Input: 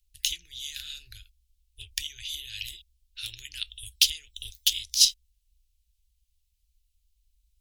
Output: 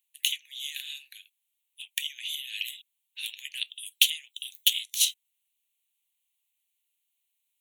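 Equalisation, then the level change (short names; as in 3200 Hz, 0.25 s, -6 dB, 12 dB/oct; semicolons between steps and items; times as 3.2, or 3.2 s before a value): HPF 740 Hz 24 dB/oct; fixed phaser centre 1400 Hz, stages 6; +5.0 dB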